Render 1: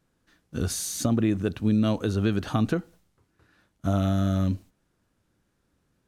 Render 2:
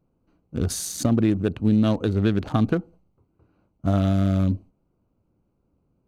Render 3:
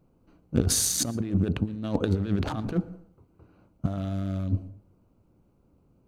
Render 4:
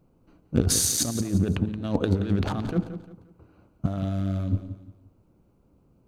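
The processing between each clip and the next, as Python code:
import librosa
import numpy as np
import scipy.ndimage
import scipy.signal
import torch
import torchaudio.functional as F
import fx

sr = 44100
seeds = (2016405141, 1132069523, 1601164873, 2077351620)

y1 = fx.wiener(x, sr, points=25)
y1 = y1 * librosa.db_to_amplitude(3.5)
y2 = fx.over_compress(y1, sr, threshold_db=-25.0, ratio=-0.5)
y2 = fx.rev_plate(y2, sr, seeds[0], rt60_s=0.64, hf_ratio=0.3, predelay_ms=105, drr_db=18.5)
y3 = fx.echo_feedback(y2, sr, ms=175, feedback_pct=34, wet_db=-12)
y3 = y3 * librosa.db_to_amplitude(1.5)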